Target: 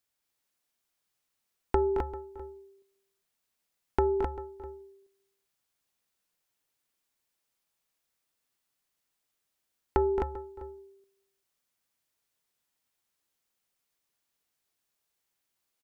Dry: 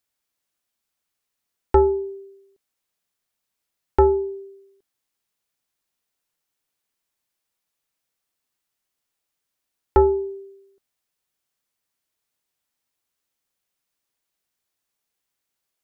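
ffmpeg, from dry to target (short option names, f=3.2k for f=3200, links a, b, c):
-filter_complex "[0:a]asplit=2[a][b];[b]aecho=0:1:393:0.0944[c];[a][c]amix=inputs=2:normalize=0,acompressor=threshold=-21dB:ratio=6,asplit=2[d][e];[e]aecho=0:1:220|242|259:0.316|0.168|0.596[f];[d][f]amix=inputs=2:normalize=0,volume=-2.5dB"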